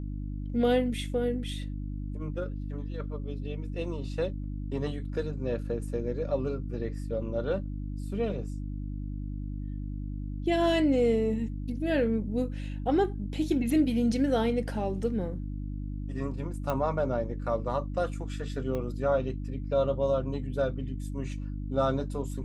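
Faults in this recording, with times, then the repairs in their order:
hum 50 Hz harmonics 6 -35 dBFS
16.70 s: pop -18 dBFS
18.75 s: pop -22 dBFS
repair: de-click; de-hum 50 Hz, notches 6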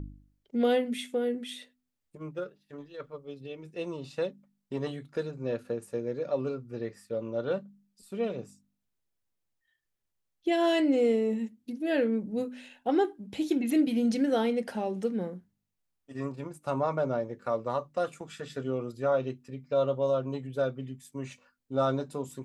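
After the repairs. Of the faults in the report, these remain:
18.75 s: pop

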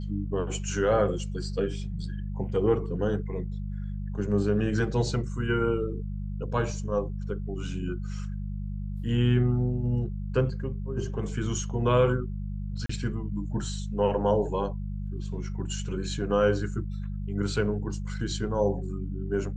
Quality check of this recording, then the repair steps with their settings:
hum 50 Hz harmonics 4 -33 dBFS
12.86–12.89 s: dropout 34 ms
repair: de-hum 50 Hz, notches 4; interpolate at 12.86 s, 34 ms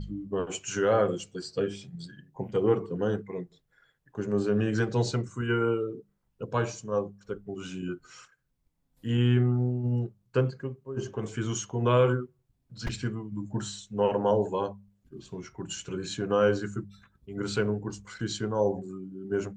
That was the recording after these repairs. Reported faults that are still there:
nothing left

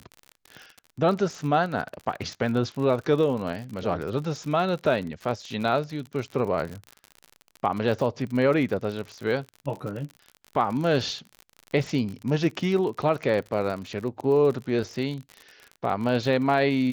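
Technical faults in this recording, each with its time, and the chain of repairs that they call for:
crackle 51 per s -32 dBFS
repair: de-click

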